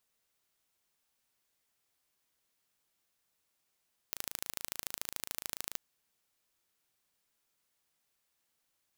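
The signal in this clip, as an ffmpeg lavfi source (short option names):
-f lavfi -i "aevalsrc='0.398*eq(mod(n,1627),0)*(0.5+0.5*eq(mod(n,3254),0))':d=1.65:s=44100"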